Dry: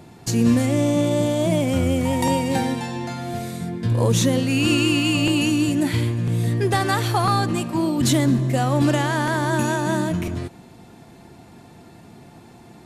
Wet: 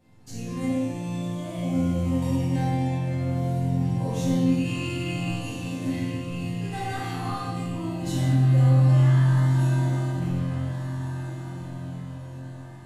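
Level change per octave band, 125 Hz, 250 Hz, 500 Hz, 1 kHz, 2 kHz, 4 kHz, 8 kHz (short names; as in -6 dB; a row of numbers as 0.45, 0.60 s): +1.0, -6.0, -10.5, -9.5, -11.0, -13.0, -13.5 dB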